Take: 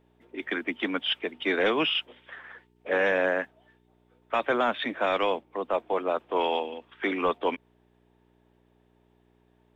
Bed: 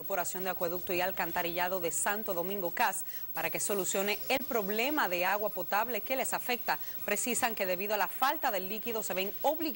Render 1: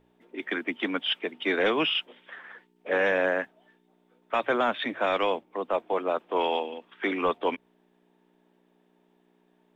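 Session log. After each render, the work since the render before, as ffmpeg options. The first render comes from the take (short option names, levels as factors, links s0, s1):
-af "bandreject=f=60:t=h:w=4,bandreject=f=120:t=h:w=4"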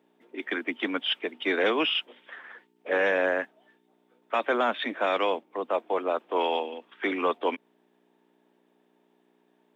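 -af "highpass=f=210:w=0.5412,highpass=f=210:w=1.3066"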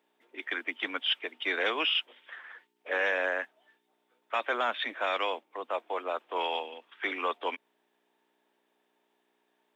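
-af "highpass=f=1100:p=1"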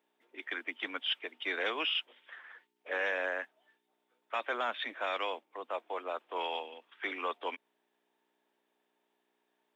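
-af "volume=0.596"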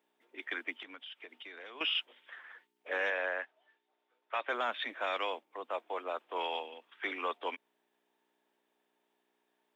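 -filter_complex "[0:a]asettb=1/sr,asplit=3[s0][s1][s2];[s0]atrim=end=0.824[s3];[s1]atrim=start=0.82:end=1.81,asetpts=PTS-STARTPTS,afade=t=in:d=0.004:c=qsin,afade=t=out:st=0.986:d=0.004:c=qsin,acompressor=threshold=0.00562:ratio=8:attack=3.2:release=140:knee=1:detection=peak[s4];[s2]atrim=start=1.806[s5];[s3][s4]acrossfade=d=0.004:c1=hsin:c2=qsin[s6];[s6][s5]acrossfade=d=0.004:c1=qsin:c2=hsin,asettb=1/sr,asplit=3[s7][s8][s9];[s7]atrim=end=3.104[s10];[s8]atrim=start=3.1:end=4.49,asetpts=PTS-STARTPTS,afade=t=in:d=0.004:c=qsin,afade=t=out:st=1.386:d=0.004:c=qsin,highpass=360,lowpass=4200[s11];[s9]atrim=start=4.486[s12];[s10][s11]acrossfade=d=0.004:c1=hsin:c2=qsin[s13];[s13][s12]acrossfade=d=0.004:c1=qsin:c2=hsin"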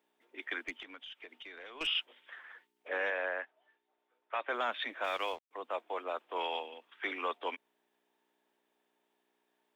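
-filter_complex "[0:a]asettb=1/sr,asplit=3[s0][s1][s2];[s0]atrim=end=0.614[s3];[s1]atrim=start=0.61:end=1.87,asetpts=PTS-STARTPTS,afade=t=in:d=0.004:c=qsin,afade=t=out:st=1.256:d=0.004:c=qsin,aeval=exprs='(tanh(28.2*val(0)+0.2)-tanh(0.2))/28.2':c=same[s4];[s2]atrim=start=1.866[s5];[s3][s4]acrossfade=d=0.004:c1=hsin:c2=qsin[s6];[s6][s5]acrossfade=d=0.004:c1=qsin:c2=hsin,asettb=1/sr,asplit=3[s7][s8][s9];[s7]atrim=end=2.884[s10];[s8]atrim=start=2.88:end=4.54,asetpts=PTS-STARTPTS,afade=t=in:d=0.004:c=qsin,afade=t=out:st=1.656:d=0.004:c=qsin,highshelf=f=4700:g=-11.5[s11];[s9]atrim=start=4.536[s12];[s10][s11]acrossfade=d=0.004:c1=hsin:c2=qsin[s13];[s13][s12]acrossfade=d=0.004:c1=qsin:c2=hsin,asettb=1/sr,asplit=3[s14][s15][s16];[s14]atrim=end=5.044[s17];[s15]atrim=start=5.04:end=5.51,asetpts=PTS-STARTPTS,afade=t=in:d=0.004:c=qsin,afade=t=out:st=0.466:d=0.004:c=qsin,aeval=exprs='sgn(val(0))*max(abs(val(0))-0.00224,0)':c=same[s18];[s16]atrim=start=5.506[s19];[s17][s18]acrossfade=d=0.004:c1=hsin:c2=qsin[s20];[s20][s19]acrossfade=d=0.004:c1=qsin:c2=hsin"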